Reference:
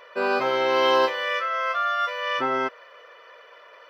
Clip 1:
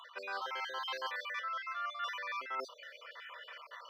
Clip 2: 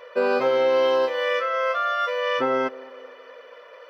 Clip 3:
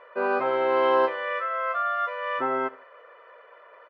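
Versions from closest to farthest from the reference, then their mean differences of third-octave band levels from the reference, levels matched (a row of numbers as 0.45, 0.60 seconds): 2, 3, 1; 2.5, 4.0, 7.5 decibels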